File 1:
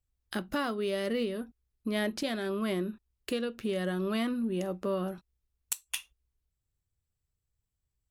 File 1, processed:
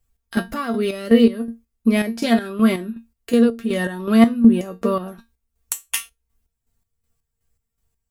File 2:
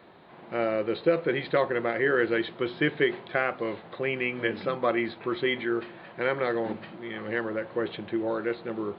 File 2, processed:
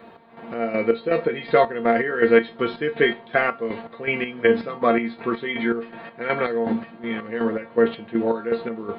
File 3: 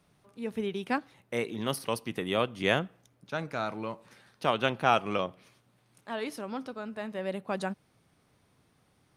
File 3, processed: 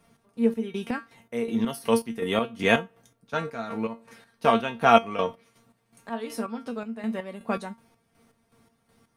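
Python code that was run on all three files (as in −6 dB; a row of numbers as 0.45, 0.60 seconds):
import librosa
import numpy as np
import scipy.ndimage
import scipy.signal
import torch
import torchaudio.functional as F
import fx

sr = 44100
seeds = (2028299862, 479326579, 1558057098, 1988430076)

y = fx.peak_eq(x, sr, hz=3700.0, db=-4.5, octaves=1.4)
y = fx.comb_fb(y, sr, f0_hz=230.0, decay_s=0.2, harmonics='all', damping=0.0, mix_pct=90)
y = fx.chopper(y, sr, hz=2.7, depth_pct=60, duty_pct=45)
y = librosa.util.normalize(y) * 10.0 ** (-1.5 / 20.0)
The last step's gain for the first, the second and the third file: +24.5, +19.0, +17.5 decibels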